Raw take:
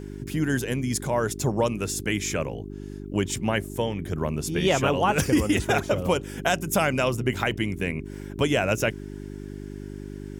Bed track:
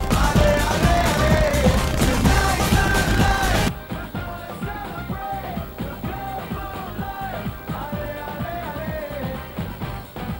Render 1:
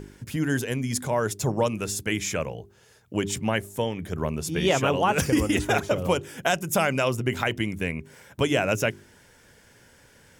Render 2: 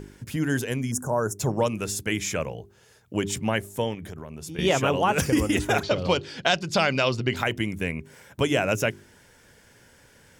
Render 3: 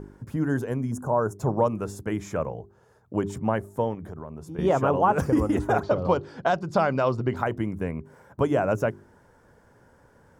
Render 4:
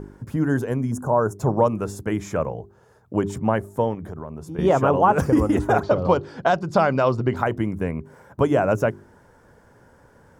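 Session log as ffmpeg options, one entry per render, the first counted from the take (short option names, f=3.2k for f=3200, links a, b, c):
-af "bandreject=f=50:t=h:w=4,bandreject=f=100:t=h:w=4,bandreject=f=150:t=h:w=4,bandreject=f=200:t=h:w=4,bandreject=f=250:t=h:w=4,bandreject=f=300:t=h:w=4,bandreject=f=350:t=h:w=4,bandreject=f=400:t=h:w=4"
-filter_complex "[0:a]asplit=3[a][b][c];[a]afade=t=out:st=0.9:d=0.02[d];[b]asuperstop=centerf=3000:order=12:qfactor=0.73,afade=t=in:st=0.9:d=0.02,afade=t=out:st=1.38:d=0.02[e];[c]afade=t=in:st=1.38:d=0.02[f];[d][e][f]amix=inputs=3:normalize=0,asettb=1/sr,asplit=3[g][h][i];[g]atrim=end=3.944[j];[h]atrim=start=3.94:end=4.59,asetpts=PTS-STARTPTS,afade=t=in:d=0.004:c=qsin,afade=t=out:st=0.646:d=0.004:c=qsin,acompressor=threshold=-33dB:ratio=12:attack=3.2:release=140:knee=1:detection=peak[k];[i]atrim=start=4.586[l];[j][k]acrossfade=d=0.004:c1=hsin:c2=qsin[m];[m][l]acrossfade=d=0.004:c1=qsin:c2=hsin,asettb=1/sr,asplit=3[n][o][p];[n]atrim=end=5.834[q];[o]atrim=start=5.83:end=7.36,asetpts=PTS-STARTPTS,afade=t=in:d=0.004:c=qsin,afade=t=out:st=1.526:d=0.004:c=qsin,lowpass=f=4.4k:t=q:w=8.3[r];[p]atrim=start=7.356[s];[q][r]acrossfade=d=0.004:c1=hsin:c2=qsin[t];[t][s]acrossfade=d=0.004:c1=qsin:c2=hsin"
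-af "highshelf=f=1.7k:t=q:w=1.5:g=-14"
-af "volume=4dB"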